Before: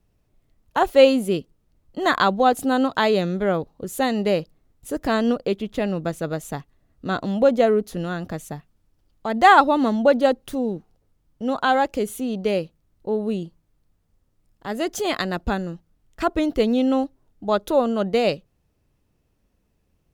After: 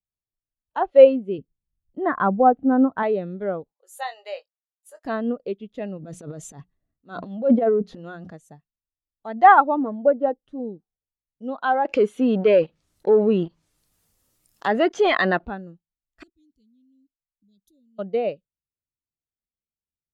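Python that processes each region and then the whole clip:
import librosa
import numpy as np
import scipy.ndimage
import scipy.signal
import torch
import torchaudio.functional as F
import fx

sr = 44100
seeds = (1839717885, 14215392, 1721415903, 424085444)

y = fx.chain(x, sr, fx.lowpass(hz=2300.0, slope=12),
    fx.low_shelf(hz=270.0, db=10.5), at=(1.38, 3.03))
y = fx.chain(y, sr, fx.highpass(hz=640.0, slope=24),
    fx.doubler(ms=22.0, db=-8.5), at=(3.73, 5.05))
y = fx.chain(y, sr, fx.hum_notches(base_hz=60, count=3),
    fx.transient(attack_db=-10, sustain_db=12), at=(5.97, 8.3))
y = fx.chain(y, sr, fx.lowpass(hz=1600.0, slope=6),
    fx.comb(ms=6.5, depth=0.35), at=(9.77, 10.6))
y = fx.chain(y, sr, fx.tilt_eq(slope=2.5),
    fx.leveller(passes=3),
    fx.env_flatten(amount_pct=50), at=(11.85, 15.47))
y = fx.chain(y, sr, fx.cheby1_bandstop(low_hz=190.0, high_hz=5000.0, order=2),
    fx.level_steps(step_db=22), at=(16.23, 17.99))
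y = fx.env_lowpass_down(y, sr, base_hz=2300.0, full_db=-15.0)
y = fx.tilt_eq(y, sr, slope=1.5)
y = fx.spectral_expand(y, sr, expansion=1.5)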